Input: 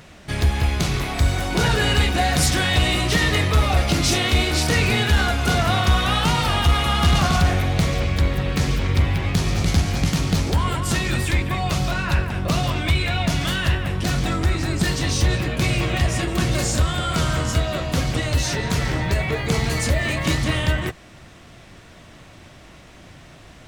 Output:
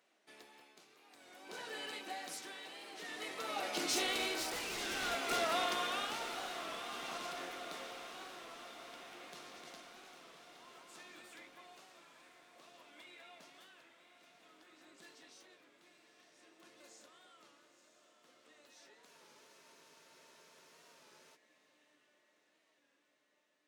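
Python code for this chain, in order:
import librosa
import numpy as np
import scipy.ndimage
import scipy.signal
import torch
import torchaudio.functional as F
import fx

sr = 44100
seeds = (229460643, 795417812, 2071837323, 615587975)

y = fx.doppler_pass(x, sr, speed_mps=13, closest_m=5.1, pass_at_s=4.76)
y = scipy.signal.sosfilt(scipy.signal.butter(4, 300.0, 'highpass', fs=sr, output='sos'), y)
y = 10.0 ** (-21.5 / 20.0) * (np.abs((y / 10.0 ** (-21.5 / 20.0) + 3.0) % 4.0 - 2.0) - 1.0)
y = y * (1.0 - 0.74 / 2.0 + 0.74 / 2.0 * np.cos(2.0 * np.pi * 0.53 * (np.arange(len(y)) / sr)))
y = fx.echo_diffused(y, sr, ms=977, feedback_pct=61, wet_db=-9.5)
y = fx.spec_freeze(y, sr, seeds[0], at_s=19.09, hold_s=2.27)
y = fx.record_warp(y, sr, rpm=33.33, depth_cents=100.0)
y = F.gain(torch.from_numpy(y), -5.0).numpy()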